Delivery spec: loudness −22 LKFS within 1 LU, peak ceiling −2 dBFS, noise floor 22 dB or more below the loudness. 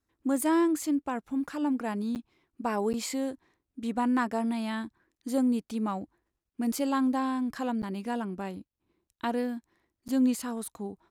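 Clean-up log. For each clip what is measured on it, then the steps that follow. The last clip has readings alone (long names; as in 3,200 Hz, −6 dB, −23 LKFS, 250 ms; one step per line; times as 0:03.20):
number of dropouts 4; longest dropout 9.0 ms; integrated loudness −30.5 LKFS; sample peak −16.0 dBFS; target loudness −22.0 LKFS
→ repair the gap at 0:02.15/0:02.93/0:07.82/0:10.08, 9 ms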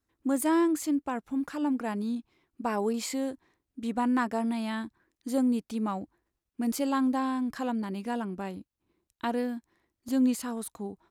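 number of dropouts 0; integrated loudness −30.5 LKFS; sample peak −16.0 dBFS; target loudness −22.0 LKFS
→ level +8.5 dB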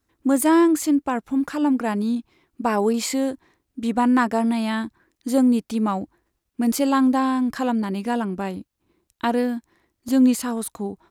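integrated loudness −22.0 LKFS; sample peak −7.5 dBFS; background noise floor −78 dBFS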